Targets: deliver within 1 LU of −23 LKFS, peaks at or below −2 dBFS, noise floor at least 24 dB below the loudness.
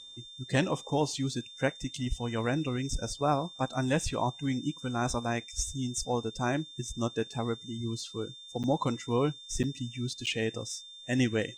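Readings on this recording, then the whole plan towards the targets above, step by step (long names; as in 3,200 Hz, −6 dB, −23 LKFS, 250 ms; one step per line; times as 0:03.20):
number of dropouts 3; longest dropout 7.8 ms; interfering tone 3,600 Hz; level of the tone −46 dBFS; integrated loudness −32.0 LKFS; sample peak −13.0 dBFS; target loudness −23.0 LKFS
→ repair the gap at 0:08.63/0:09.63/0:10.26, 7.8 ms
notch filter 3,600 Hz, Q 30
level +9 dB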